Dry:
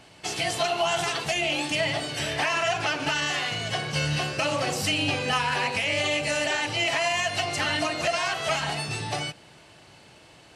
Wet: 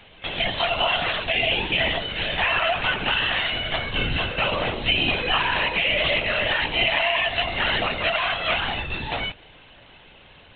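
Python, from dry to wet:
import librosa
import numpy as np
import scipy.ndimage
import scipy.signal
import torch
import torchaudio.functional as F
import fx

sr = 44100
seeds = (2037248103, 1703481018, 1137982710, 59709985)

y = fx.high_shelf(x, sr, hz=2500.0, db=8.5)
y = fx.lpc_vocoder(y, sr, seeds[0], excitation='whisper', order=16)
y = y * 10.0 ** (1.0 / 20.0)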